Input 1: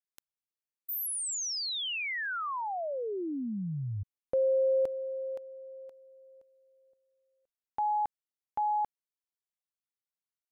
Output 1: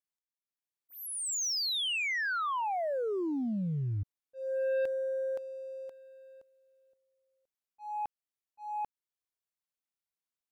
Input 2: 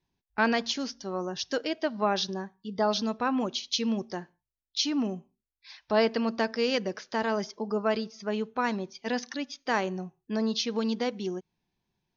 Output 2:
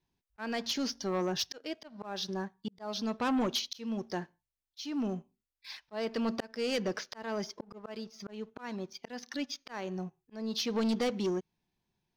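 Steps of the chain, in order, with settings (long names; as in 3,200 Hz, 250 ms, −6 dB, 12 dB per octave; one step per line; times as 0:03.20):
volume swells 576 ms
leveller curve on the samples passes 1
soft clipping −25 dBFS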